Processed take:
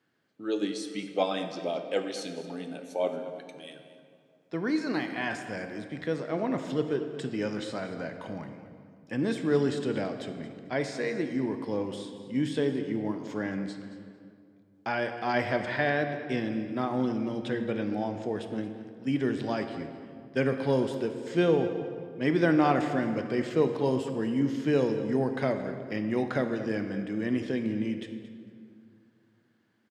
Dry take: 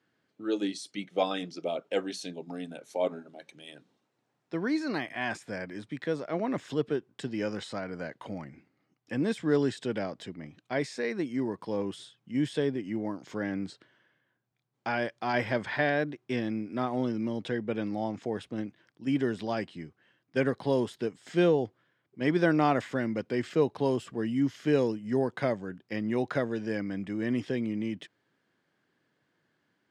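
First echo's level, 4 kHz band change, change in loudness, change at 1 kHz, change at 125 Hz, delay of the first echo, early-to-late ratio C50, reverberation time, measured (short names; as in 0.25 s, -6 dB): -15.0 dB, +0.5 dB, +1.0 dB, +1.0 dB, +1.5 dB, 0.225 s, 7.5 dB, 2.3 s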